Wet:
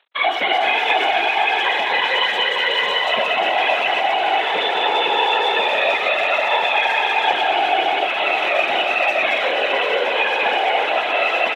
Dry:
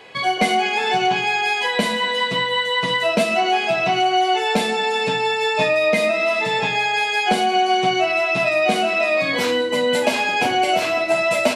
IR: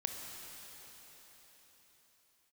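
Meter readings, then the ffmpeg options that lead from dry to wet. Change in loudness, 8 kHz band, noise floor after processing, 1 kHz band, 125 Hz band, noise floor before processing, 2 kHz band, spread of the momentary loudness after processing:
+1.5 dB, under -10 dB, -22 dBFS, +1.5 dB, under -15 dB, -23 dBFS, +2.5 dB, 2 LU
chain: -filter_complex "[0:a]aeval=exprs='val(0)+0.5*0.0376*sgn(val(0))':c=same,tremolo=f=4.1:d=0.55[s0];[1:a]atrim=start_sample=2205,asetrate=28224,aresample=44100[s1];[s0][s1]afir=irnorm=-1:irlink=0,aresample=8000,acrusher=bits=3:mix=0:aa=0.5,aresample=44100,alimiter=limit=0.316:level=0:latency=1:release=203,asplit=2[s2][s3];[s3]adelay=120,highpass=300,lowpass=3400,asoftclip=type=hard:threshold=0.119,volume=0.316[s4];[s2][s4]amix=inputs=2:normalize=0,afftfilt=real='hypot(re,im)*cos(2*PI*random(0))':imag='hypot(re,im)*sin(2*PI*random(1))':win_size=512:overlap=0.75,highpass=610,volume=2.66"

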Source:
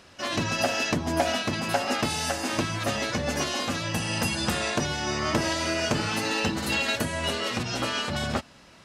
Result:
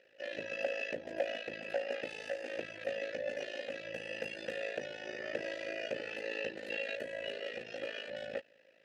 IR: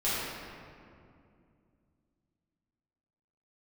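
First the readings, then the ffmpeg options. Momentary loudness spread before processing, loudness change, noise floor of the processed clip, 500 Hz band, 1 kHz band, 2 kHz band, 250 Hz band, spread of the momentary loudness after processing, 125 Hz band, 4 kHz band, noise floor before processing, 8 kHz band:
3 LU, -13.0 dB, -65 dBFS, -7.0 dB, -21.0 dB, -11.0 dB, -20.5 dB, 5 LU, -28.5 dB, -17.5 dB, -52 dBFS, -27.5 dB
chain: -filter_complex "[0:a]tremolo=f=54:d=0.857,asplit=3[s0][s1][s2];[s0]bandpass=f=530:t=q:w=8,volume=1[s3];[s1]bandpass=f=1840:t=q:w=8,volume=0.501[s4];[s2]bandpass=f=2480:t=q:w=8,volume=0.355[s5];[s3][s4][s5]amix=inputs=3:normalize=0,volume=1.41"

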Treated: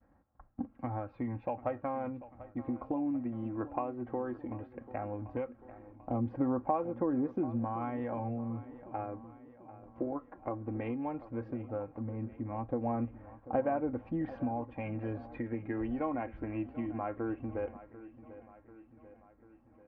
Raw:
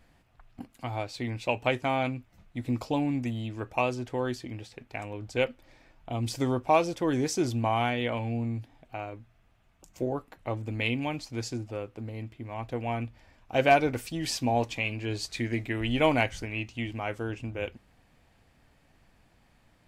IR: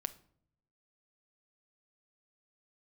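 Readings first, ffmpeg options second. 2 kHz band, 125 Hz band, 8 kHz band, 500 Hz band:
-17.5 dB, -8.0 dB, under -35 dB, -7.0 dB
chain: -filter_complex "[0:a]highpass=53,agate=range=0.0224:threshold=0.00141:ratio=3:detection=peak,lowpass=f=1400:w=0.5412,lowpass=f=1400:w=1.3066,aecho=1:1:3.7:0.52,acompressor=threshold=0.0251:ratio=6,aphaser=in_gain=1:out_gain=1:delay=3:decay=0.35:speed=0.15:type=sinusoidal,asplit=2[s0][s1];[s1]aecho=0:1:741|1482|2223|2964|3705:0.158|0.0888|0.0497|0.0278|0.0156[s2];[s0][s2]amix=inputs=2:normalize=0"

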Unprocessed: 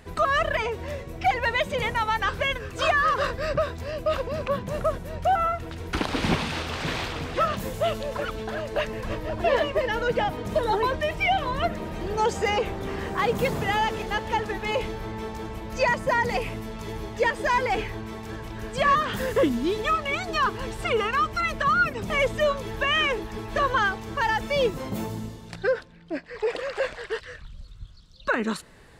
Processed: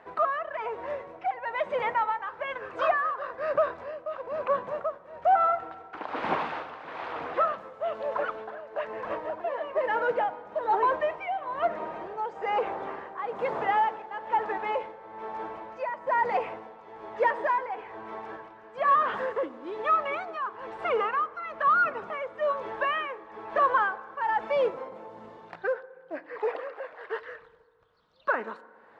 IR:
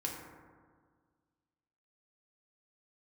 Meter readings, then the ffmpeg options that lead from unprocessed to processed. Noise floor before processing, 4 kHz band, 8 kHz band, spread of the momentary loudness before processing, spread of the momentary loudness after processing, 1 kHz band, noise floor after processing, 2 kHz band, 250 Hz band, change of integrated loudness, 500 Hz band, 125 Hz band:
-45 dBFS, -15.5 dB, under -25 dB, 11 LU, 15 LU, -1.0 dB, -53 dBFS, -6.5 dB, -13.0 dB, -3.0 dB, -3.5 dB, under -20 dB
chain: -filter_complex "[0:a]tremolo=f=1.1:d=0.76,acrusher=bits=5:mode=log:mix=0:aa=0.000001,asplit=2[s0][s1];[s1]highpass=f=720:p=1,volume=3.98,asoftclip=type=tanh:threshold=0.335[s2];[s0][s2]amix=inputs=2:normalize=0,lowpass=f=1100:p=1,volume=0.501,bandpass=f=920:t=q:w=0.94:csg=0,asplit=2[s3][s4];[1:a]atrim=start_sample=2205[s5];[s4][s5]afir=irnorm=-1:irlink=0,volume=0.168[s6];[s3][s6]amix=inputs=2:normalize=0"

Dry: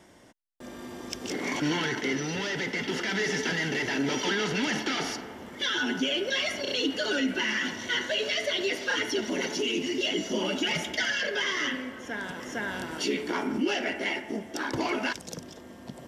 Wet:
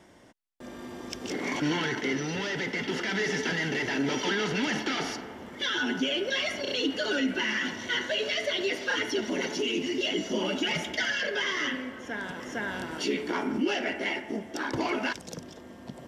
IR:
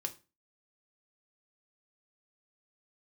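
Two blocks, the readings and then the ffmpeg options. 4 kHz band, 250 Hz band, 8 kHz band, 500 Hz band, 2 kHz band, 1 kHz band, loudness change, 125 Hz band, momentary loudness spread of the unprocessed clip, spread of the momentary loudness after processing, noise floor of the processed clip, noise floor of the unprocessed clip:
-1.5 dB, 0.0 dB, -3.0 dB, 0.0 dB, -0.5 dB, 0.0 dB, -0.5 dB, 0.0 dB, 9 LU, 9 LU, -47 dBFS, -47 dBFS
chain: -af "highshelf=f=5800:g=-5.5"

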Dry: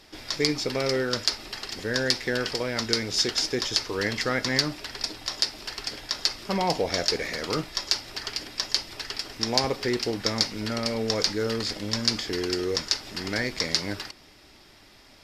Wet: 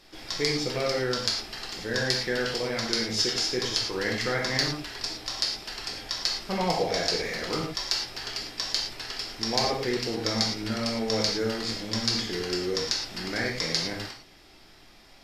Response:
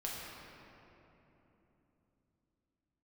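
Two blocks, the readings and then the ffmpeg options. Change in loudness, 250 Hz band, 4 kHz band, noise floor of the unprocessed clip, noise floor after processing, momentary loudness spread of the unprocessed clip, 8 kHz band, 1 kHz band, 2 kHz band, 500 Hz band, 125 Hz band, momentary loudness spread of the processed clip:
-1.0 dB, -1.5 dB, -1.0 dB, -53 dBFS, -53 dBFS, 8 LU, -1.5 dB, -0.5 dB, -1.0 dB, -1.0 dB, -0.5 dB, 7 LU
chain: -filter_complex "[1:a]atrim=start_sample=2205,afade=t=out:st=0.17:d=0.01,atrim=end_sample=7938[s0];[0:a][s0]afir=irnorm=-1:irlink=0"

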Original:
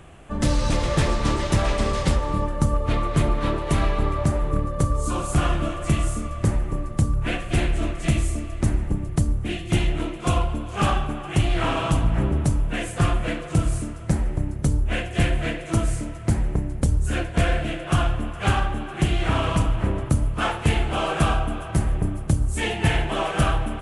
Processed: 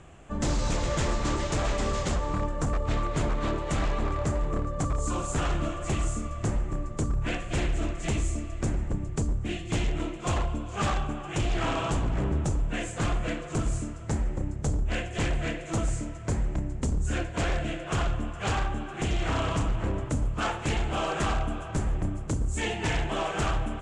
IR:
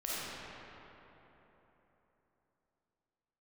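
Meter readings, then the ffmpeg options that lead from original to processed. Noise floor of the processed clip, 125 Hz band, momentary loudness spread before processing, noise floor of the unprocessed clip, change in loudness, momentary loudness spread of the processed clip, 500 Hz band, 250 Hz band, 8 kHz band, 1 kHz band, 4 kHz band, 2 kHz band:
-38 dBFS, -7.0 dB, 4 LU, -34 dBFS, -6.0 dB, 4 LU, -4.5 dB, -6.0 dB, -2.5 dB, -5.0 dB, -5.5 dB, -5.0 dB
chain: -af "aeval=exprs='0.15*(abs(mod(val(0)/0.15+3,4)-2)-1)':c=same,lowpass=f=7300:t=q:w=4.1,aemphasis=mode=reproduction:type=cd,volume=0.596"

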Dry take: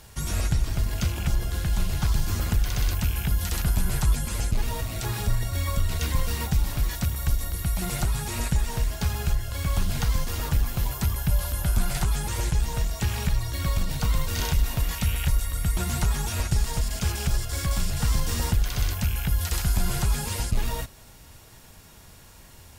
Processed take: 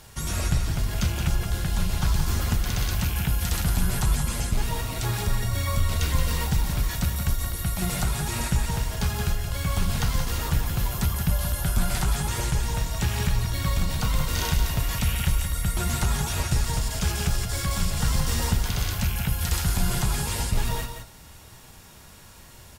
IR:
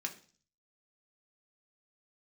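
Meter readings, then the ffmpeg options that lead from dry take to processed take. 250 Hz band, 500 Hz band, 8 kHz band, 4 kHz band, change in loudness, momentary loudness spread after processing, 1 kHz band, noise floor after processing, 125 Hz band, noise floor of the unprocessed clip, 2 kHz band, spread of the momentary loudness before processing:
+2.0 dB, +1.5 dB, +2.0 dB, +2.5 dB, +1.0 dB, 3 LU, +2.5 dB, -47 dBFS, +1.0 dB, -49 dBFS, +2.5 dB, 3 LU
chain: -filter_complex "[0:a]flanger=delay=7.8:depth=4.6:regen=-72:speed=1.2:shape=triangular,aecho=1:1:174:0.422,asplit=2[s0][s1];[1:a]atrim=start_sample=2205,asetrate=24255,aresample=44100[s2];[s1][s2]afir=irnorm=-1:irlink=0,volume=0.211[s3];[s0][s3]amix=inputs=2:normalize=0,volume=1.58"

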